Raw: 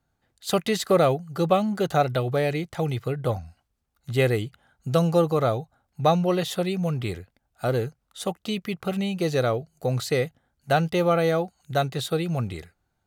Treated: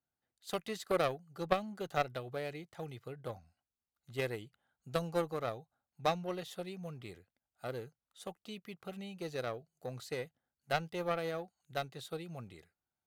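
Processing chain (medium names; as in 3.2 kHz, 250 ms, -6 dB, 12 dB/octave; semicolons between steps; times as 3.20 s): bass shelf 92 Hz -12 dB; Chebyshev shaper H 3 -12 dB, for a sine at -6.5 dBFS; trim -5 dB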